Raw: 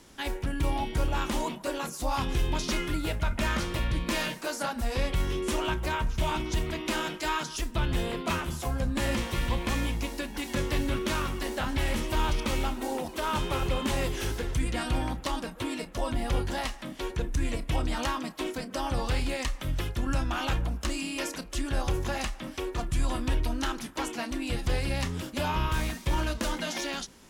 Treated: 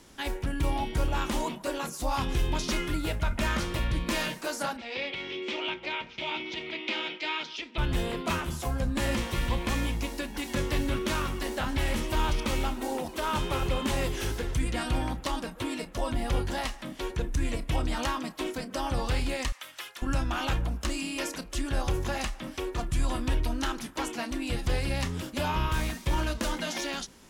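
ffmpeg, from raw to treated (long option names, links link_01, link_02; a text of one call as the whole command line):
ffmpeg -i in.wav -filter_complex "[0:a]asplit=3[link_01][link_02][link_03];[link_01]afade=type=out:start_time=4.76:duration=0.02[link_04];[link_02]highpass=370,equalizer=frequency=450:width_type=q:width=4:gain=-3,equalizer=frequency=690:width_type=q:width=4:gain=-6,equalizer=frequency=1100:width_type=q:width=4:gain=-10,equalizer=frequency=1600:width_type=q:width=4:gain=-7,equalizer=frequency=2300:width_type=q:width=4:gain=8,equalizer=frequency=3300:width_type=q:width=4:gain=4,lowpass=frequency=4400:width=0.5412,lowpass=frequency=4400:width=1.3066,afade=type=in:start_time=4.76:duration=0.02,afade=type=out:start_time=7.77:duration=0.02[link_05];[link_03]afade=type=in:start_time=7.77:duration=0.02[link_06];[link_04][link_05][link_06]amix=inputs=3:normalize=0,asettb=1/sr,asplit=3[link_07][link_08][link_09];[link_07]atrim=end=19.524[link_10];[link_08]atrim=start=19.52:end=20.02,asetpts=PTS-STARTPTS,afade=type=in:duration=0.004:curve=qsin,afade=type=out:start_time=0.496:duration=0.004:curve=qsin,highpass=1100[link_11];[link_09]atrim=start=20.016[link_12];[link_10][link_11]acrossfade=duration=0.004:curve1=hsin:curve2=qsin[link_13];[link_13][link_12]acrossfade=duration=0.004:curve1=qsin:curve2=hsin" out.wav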